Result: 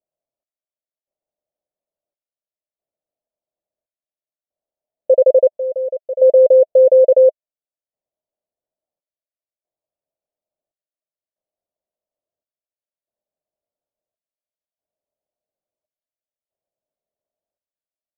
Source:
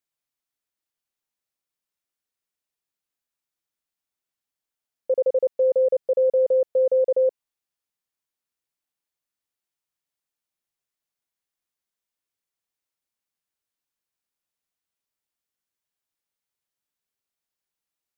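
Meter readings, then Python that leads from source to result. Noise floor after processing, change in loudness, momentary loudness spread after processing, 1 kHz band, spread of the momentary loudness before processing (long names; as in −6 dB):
below −85 dBFS, +9.0 dB, 12 LU, can't be measured, 4 LU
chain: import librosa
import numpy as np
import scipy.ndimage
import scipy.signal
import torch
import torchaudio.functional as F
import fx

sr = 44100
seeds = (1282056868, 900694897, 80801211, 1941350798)

y = fx.step_gate(x, sr, bpm=70, pattern='xx...xxx', floor_db=-12.0, edge_ms=4.5)
y = fx.lowpass_res(y, sr, hz=620.0, q=7.7)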